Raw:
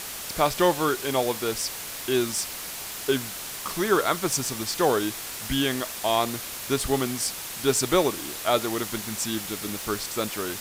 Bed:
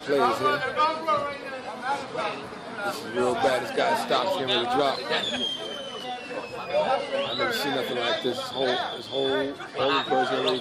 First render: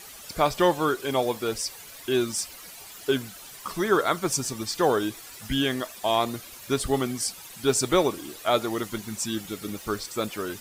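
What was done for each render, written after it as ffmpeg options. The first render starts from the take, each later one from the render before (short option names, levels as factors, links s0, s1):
-af "afftdn=nr=12:nf=-36"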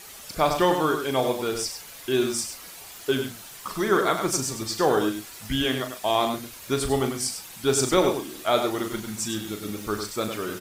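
-filter_complex "[0:a]asplit=2[s0][s1];[s1]adelay=38,volume=0.355[s2];[s0][s2]amix=inputs=2:normalize=0,asplit=2[s3][s4];[s4]adelay=99.13,volume=0.447,highshelf=f=4000:g=-2.23[s5];[s3][s5]amix=inputs=2:normalize=0"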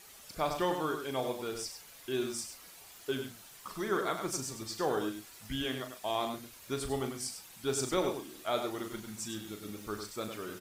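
-af "volume=0.299"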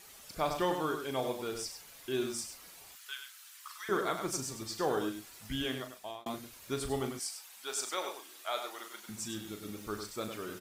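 -filter_complex "[0:a]asettb=1/sr,asplit=3[s0][s1][s2];[s0]atrim=end=2.954[s3];[s1]atrim=start=2.95:end=3.89,asetpts=PTS-STARTPTS,afade=t=in:d=0.004:c=qsin,afade=t=out:st=0.936:d=0.004:c=qsin,highpass=f=1200:w=0.5412,highpass=f=1200:w=1.3066[s4];[s2]atrim=start=3.886[s5];[s3][s4]acrossfade=d=0.004:c1=hsin:c2=qsin[s6];[s6][s5]acrossfade=d=0.004:c1=qsin:c2=hsin,asettb=1/sr,asplit=3[s7][s8][s9];[s7]atrim=end=7.194[s10];[s8]atrim=start=7.19:end=9.09,asetpts=PTS-STARTPTS,afade=t=in:d=0.004:c=qsin,afade=t=out:st=1.896:d=0.004:c=qsin,highpass=770[s11];[s9]atrim=start=9.086[s12];[s10][s11]acrossfade=d=0.004:c1=hsin:c2=qsin[s13];[s13][s12]acrossfade=d=0.004:c1=qsin:c2=hsin,asplit=2[s14][s15];[s14]atrim=end=6.26,asetpts=PTS-STARTPTS,afade=t=out:st=5.59:d=0.67:c=qsin[s16];[s15]atrim=start=6.26,asetpts=PTS-STARTPTS,afade=t=in:d=0.004:c=hsin[s17];[s16][s17]concat=n=2:v=0:a=1"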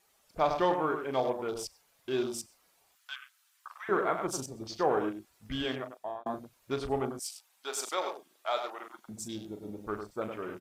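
-af "afwtdn=0.00501,equalizer=f=730:w=0.74:g=6"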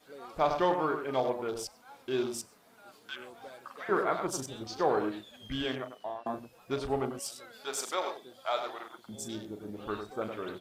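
-filter_complex "[1:a]volume=0.0562[s0];[0:a][s0]amix=inputs=2:normalize=0"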